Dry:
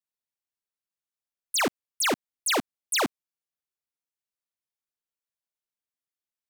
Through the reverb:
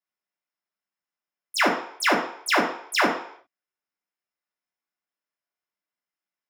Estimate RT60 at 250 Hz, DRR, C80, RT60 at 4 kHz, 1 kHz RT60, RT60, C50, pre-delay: 0.45 s, -3.5 dB, 9.5 dB, 0.60 s, 0.65 s, 0.60 s, 6.5 dB, 3 ms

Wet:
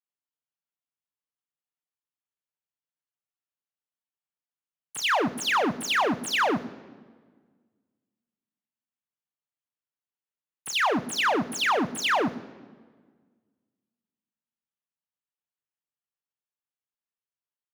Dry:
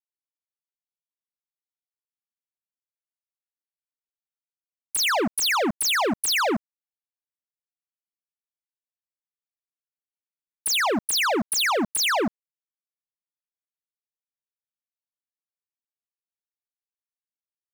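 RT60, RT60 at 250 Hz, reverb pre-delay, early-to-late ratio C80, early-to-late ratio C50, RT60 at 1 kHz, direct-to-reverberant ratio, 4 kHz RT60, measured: 1.6 s, 2.0 s, 3 ms, 19.0 dB, 18.5 dB, 1.5 s, 9.5 dB, 1.1 s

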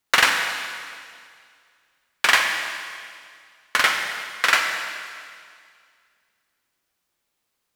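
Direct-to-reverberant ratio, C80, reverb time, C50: 3.0 dB, 5.0 dB, 2.1 s, 4.0 dB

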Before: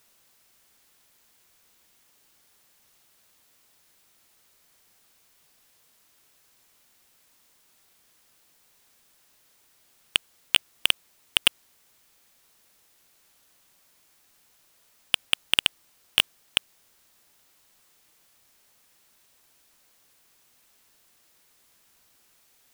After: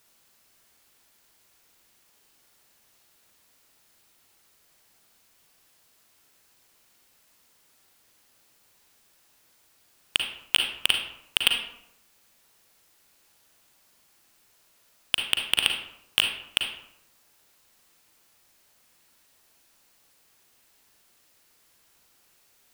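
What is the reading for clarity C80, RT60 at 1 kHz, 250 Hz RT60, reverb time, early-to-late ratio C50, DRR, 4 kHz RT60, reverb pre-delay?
8.0 dB, 0.75 s, 0.80 s, 0.80 s, 4.5 dB, 2.5 dB, 0.45 s, 37 ms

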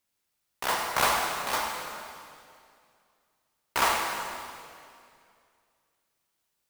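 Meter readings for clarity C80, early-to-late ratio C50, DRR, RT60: 3.0 dB, 1.5 dB, 0.0 dB, 2.4 s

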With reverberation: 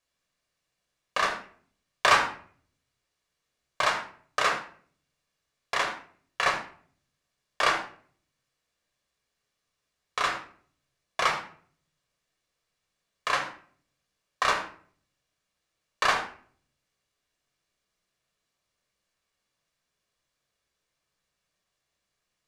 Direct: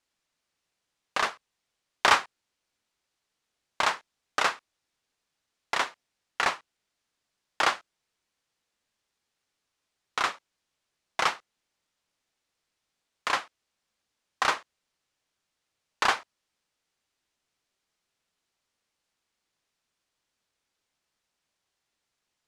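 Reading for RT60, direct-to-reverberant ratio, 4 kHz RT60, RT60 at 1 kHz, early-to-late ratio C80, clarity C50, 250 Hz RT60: 0.50 s, 2.5 dB, 0.35 s, 0.45 s, 11.5 dB, 7.5 dB, 0.70 s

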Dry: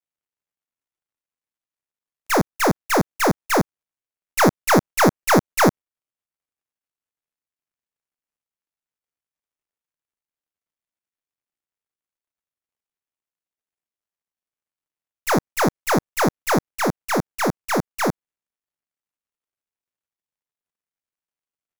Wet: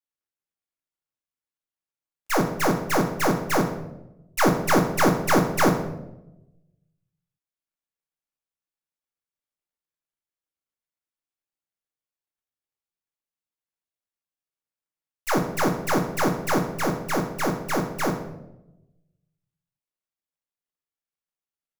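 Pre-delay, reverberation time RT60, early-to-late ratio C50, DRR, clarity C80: 3 ms, 0.90 s, 8.0 dB, 2.5 dB, 11.0 dB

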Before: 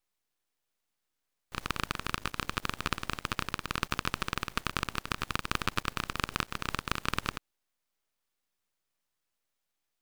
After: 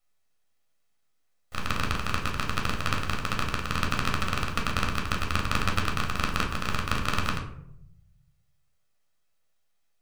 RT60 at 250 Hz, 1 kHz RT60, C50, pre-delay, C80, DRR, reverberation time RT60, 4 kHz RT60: 1.2 s, 0.65 s, 8.0 dB, 11 ms, 11.5 dB, 0.5 dB, 0.75 s, 0.35 s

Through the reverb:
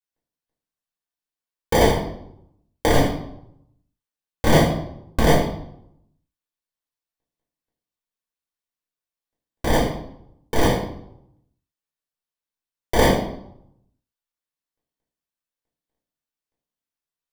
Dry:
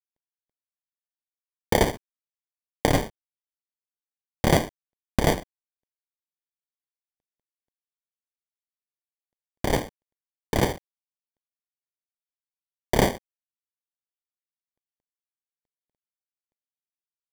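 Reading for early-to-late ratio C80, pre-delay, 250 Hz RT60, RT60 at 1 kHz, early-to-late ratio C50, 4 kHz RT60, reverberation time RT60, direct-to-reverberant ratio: 8.5 dB, 3 ms, 0.85 s, 0.70 s, 5.0 dB, 0.55 s, 0.75 s, -6.5 dB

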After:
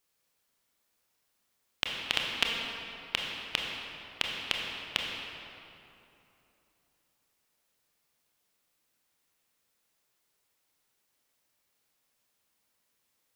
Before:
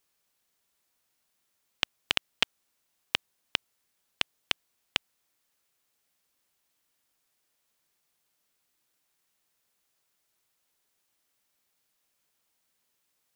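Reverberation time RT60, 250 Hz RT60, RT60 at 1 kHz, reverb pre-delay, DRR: 3.0 s, 3.2 s, 2.9 s, 24 ms, -1.0 dB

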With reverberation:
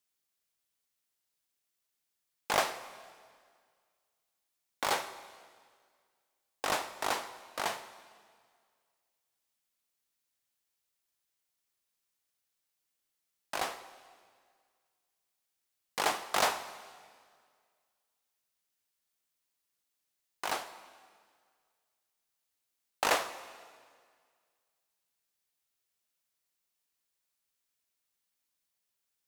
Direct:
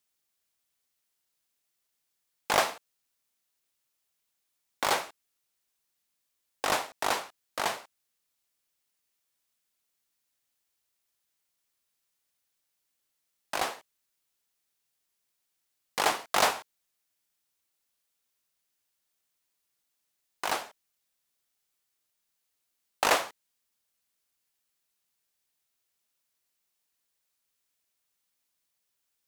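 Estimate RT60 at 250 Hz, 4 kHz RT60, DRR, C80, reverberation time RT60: 1.9 s, 1.8 s, 12.0 dB, 14.0 dB, 1.9 s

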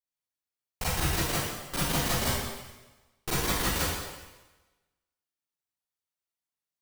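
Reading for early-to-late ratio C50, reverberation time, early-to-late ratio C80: -4.0 dB, 1.2 s, 0.5 dB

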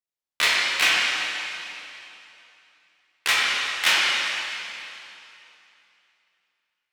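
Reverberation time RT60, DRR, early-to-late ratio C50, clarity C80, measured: 2.9 s, -6.5 dB, -2.5 dB, -1.0 dB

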